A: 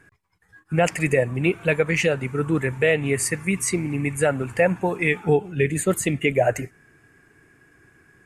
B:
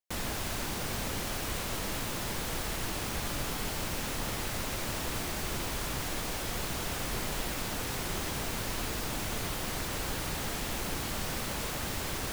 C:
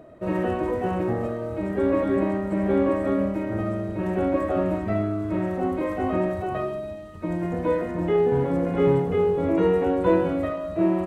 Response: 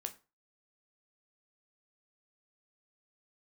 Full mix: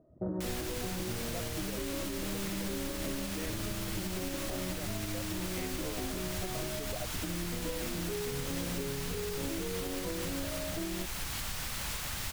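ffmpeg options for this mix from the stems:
-filter_complex "[0:a]adelay=550,volume=-12.5dB[link_01];[1:a]equalizer=frequency=370:width=0.54:gain=-12,adelay=300,volume=2.5dB[link_02];[2:a]lowpass=1100,lowshelf=frequency=450:gain=10.5,volume=-6dB[link_03];[link_01][link_03]amix=inputs=2:normalize=0,afwtdn=0.0224,acompressor=threshold=-30dB:ratio=6,volume=0dB[link_04];[link_02][link_04]amix=inputs=2:normalize=0,alimiter=level_in=2dB:limit=-24dB:level=0:latency=1:release=255,volume=-2dB"

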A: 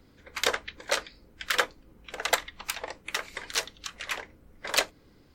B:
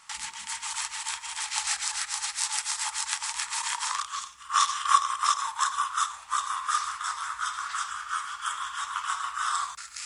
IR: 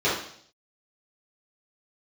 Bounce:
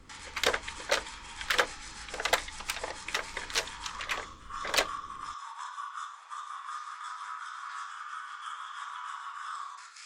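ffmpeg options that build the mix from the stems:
-filter_complex "[0:a]lowshelf=frequency=72:gain=7.5,volume=-0.5dB[link_01];[1:a]acompressor=threshold=-32dB:ratio=6,highpass=frequency=280:width=0.5412,highpass=frequency=280:width=1.3066,volume=-9.5dB,asplit=2[link_02][link_03];[link_03]volume=-13dB[link_04];[2:a]atrim=start_sample=2205[link_05];[link_04][link_05]afir=irnorm=-1:irlink=0[link_06];[link_01][link_02][link_06]amix=inputs=3:normalize=0,highshelf=frequency=11000:gain=-10.5,asoftclip=type=hard:threshold=-14.5dB"

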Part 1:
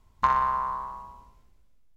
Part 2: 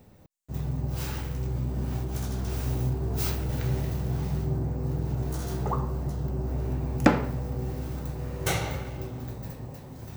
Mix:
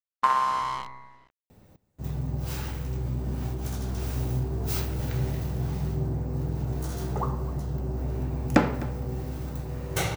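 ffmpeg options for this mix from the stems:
ffmpeg -i stem1.wav -i stem2.wav -filter_complex "[0:a]highpass=frequency=220:width=0.5412,highpass=frequency=220:width=1.3066,acrusher=bits=6:dc=4:mix=0:aa=0.000001,adynamicsmooth=sensitivity=2:basefreq=2600,volume=0.5dB[link_01];[1:a]adelay=1500,volume=-0.5dB,asplit=2[link_02][link_03];[link_03]volume=-18dB,aecho=0:1:255:1[link_04];[link_01][link_02][link_04]amix=inputs=3:normalize=0" out.wav

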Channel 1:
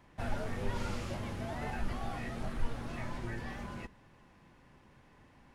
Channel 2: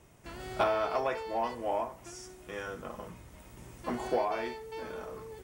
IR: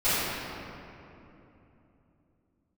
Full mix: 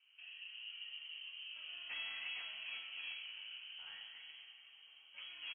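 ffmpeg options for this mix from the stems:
-filter_complex "[0:a]flanger=delay=20:depth=6:speed=0.93,acompressor=threshold=-48dB:ratio=3,bandpass=frequency=440:width_type=q:width=2.5:csg=0,volume=2.5dB,asplit=2[link_01][link_02];[link_02]volume=-13dB[link_03];[1:a]aeval=exprs='(tanh(25.1*val(0)+0.55)-tanh(0.55))/25.1':channel_layout=same,adelay=1300,volume=-16dB,asplit=2[link_04][link_05];[link_05]volume=-17dB[link_06];[2:a]atrim=start_sample=2205[link_07];[link_03][link_06]amix=inputs=2:normalize=0[link_08];[link_08][link_07]afir=irnorm=-1:irlink=0[link_09];[link_01][link_04][link_09]amix=inputs=3:normalize=0,lowpass=frequency=2800:width_type=q:width=0.5098,lowpass=frequency=2800:width_type=q:width=0.6013,lowpass=frequency=2800:width_type=q:width=0.9,lowpass=frequency=2800:width_type=q:width=2.563,afreqshift=-3300"

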